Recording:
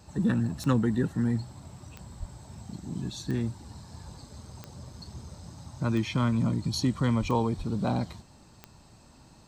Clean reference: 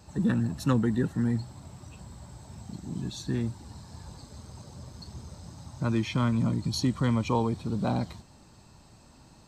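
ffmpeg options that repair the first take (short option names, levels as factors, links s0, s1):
-filter_complex "[0:a]adeclick=t=4,asplit=3[s0][s1][s2];[s0]afade=t=out:st=2.19:d=0.02[s3];[s1]highpass=f=140:w=0.5412,highpass=f=140:w=1.3066,afade=t=in:st=2.19:d=0.02,afade=t=out:st=2.31:d=0.02[s4];[s2]afade=t=in:st=2.31:d=0.02[s5];[s3][s4][s5]amix=inputs=3:normalize=0,asplit=3[s6][s7][s8];[s6]afade=t=out:st=7.2:d=0.02[s9];[s7]highpass=f=140:w=0.5412,highpass=f=140:w=1.3066,afade=t=in:st=7.2:d=0.02,afade=t=out:st=7.32:d=0.02[s10];[s8]afade=t=in:st=7.32:d=0.02[s11];[s9][s10][s11]amix=inputs=3:normalize=0,asplit=3[s12][s13][s14];[s12]afade=t=out:st=7.57:d=0.02[s15];[s13]highpass=f=140:w=0.5412,highpass=f=140:w=1.3066,afade=t=in:st=7.57:d=0.02,afade=t=out:st=7.69:d=0.02[s16];[s14]afade=t=in:st=7.69:d=0.02[s17];[s15][s16][s17]amix=inputs=3:normalize=0"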